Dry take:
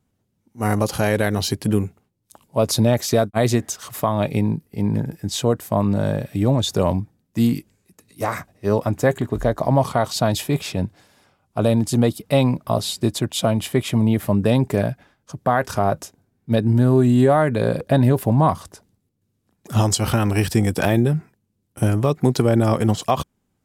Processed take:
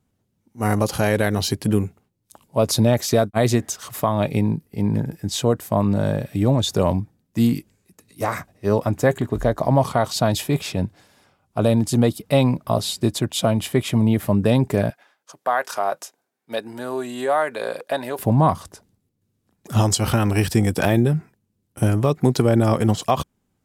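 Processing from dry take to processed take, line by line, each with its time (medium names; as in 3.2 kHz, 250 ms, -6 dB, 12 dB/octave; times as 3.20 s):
14.90–18.19 s: high-pass 620 Hz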